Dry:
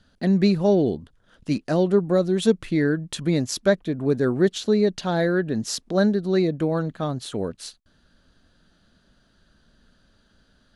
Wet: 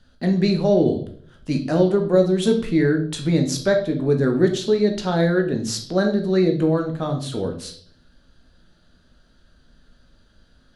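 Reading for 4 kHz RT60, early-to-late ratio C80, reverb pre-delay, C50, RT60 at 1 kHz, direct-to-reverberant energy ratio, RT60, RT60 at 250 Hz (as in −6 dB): 0.55 s, 14.0 dB, 12 ms, 9.5 dB, 0.40 s, 3.5 dB, 0.55 s, 0.65 s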